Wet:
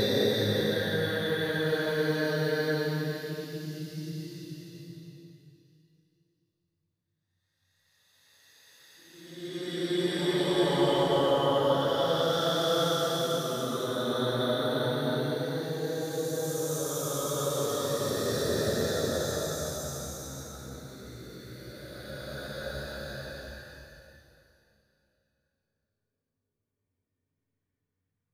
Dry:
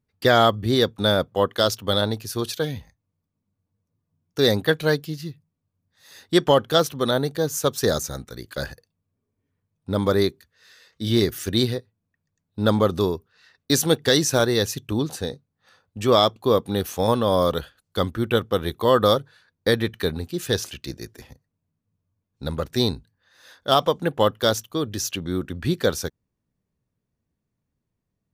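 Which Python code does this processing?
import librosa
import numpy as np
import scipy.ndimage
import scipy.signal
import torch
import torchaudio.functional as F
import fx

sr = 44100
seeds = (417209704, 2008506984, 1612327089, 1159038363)

y = fx.rev_schroeder(x, sr, rt60_s=0.59, comb_ms=26, drr_db=10.5)
y = fx.paulstretch(y, sr, seeds[0], factor=5.5, window_s=0.5, from_s=4.47)
y = F.gain(torch.from_numpy(y), -7.5).numpy()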